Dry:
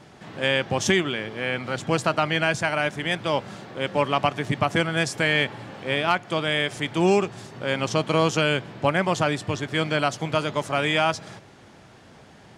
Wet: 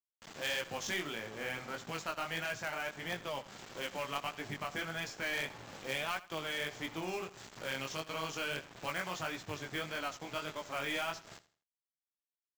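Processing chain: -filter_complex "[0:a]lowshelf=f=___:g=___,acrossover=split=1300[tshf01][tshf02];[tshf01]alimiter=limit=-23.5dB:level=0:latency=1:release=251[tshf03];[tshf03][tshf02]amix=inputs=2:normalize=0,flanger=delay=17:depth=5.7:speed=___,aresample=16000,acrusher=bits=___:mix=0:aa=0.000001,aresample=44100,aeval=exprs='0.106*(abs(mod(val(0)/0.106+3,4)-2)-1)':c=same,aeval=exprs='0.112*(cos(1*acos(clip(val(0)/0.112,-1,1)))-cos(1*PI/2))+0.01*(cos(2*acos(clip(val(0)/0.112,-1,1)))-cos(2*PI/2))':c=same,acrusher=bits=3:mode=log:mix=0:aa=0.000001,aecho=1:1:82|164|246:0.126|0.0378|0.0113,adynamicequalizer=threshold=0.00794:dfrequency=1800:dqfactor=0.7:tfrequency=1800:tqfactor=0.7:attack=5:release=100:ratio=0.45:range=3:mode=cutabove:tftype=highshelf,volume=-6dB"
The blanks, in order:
340, -7, 1.6, 6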